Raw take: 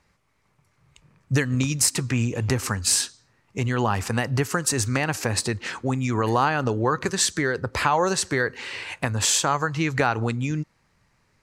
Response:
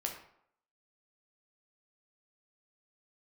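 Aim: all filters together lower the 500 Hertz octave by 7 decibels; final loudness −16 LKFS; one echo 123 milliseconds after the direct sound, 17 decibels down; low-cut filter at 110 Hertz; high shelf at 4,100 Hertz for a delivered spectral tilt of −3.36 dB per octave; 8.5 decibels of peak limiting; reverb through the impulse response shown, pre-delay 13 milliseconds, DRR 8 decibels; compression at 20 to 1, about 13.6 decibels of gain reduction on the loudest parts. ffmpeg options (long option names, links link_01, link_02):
-filter_complex "[0:a]highpass=110,equalizer=frequency=500:width_type=o:gain=-9,highshelf=frequency=4100:gain=6,acompressor=threshold=-25dB:ratio=20,alimiter=limit=-18.5dB:level=0:latency=1,aecho=1:1:123:0.141,asplit=2[link_01][link_02];[1:a]atrim=start_sample=2205,adelay=13[link_03];[link_02][link_03]afir=irnorm=-1:irlink=0,volume=-9.5dB[link_04];[link_01][link_04]amix=inputs=2:normalize=0,volume=14.5dB"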